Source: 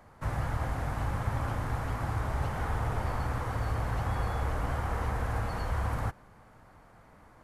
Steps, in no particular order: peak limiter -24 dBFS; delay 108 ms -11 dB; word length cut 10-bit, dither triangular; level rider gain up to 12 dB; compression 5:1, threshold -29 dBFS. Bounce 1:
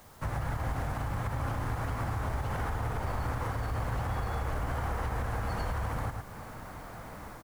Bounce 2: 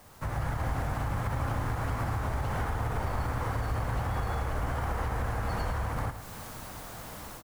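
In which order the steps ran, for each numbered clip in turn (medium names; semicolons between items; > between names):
level rider > delay > compression > peak limiter > word length cut; peak limiter > word length cut > level rider > compression > delay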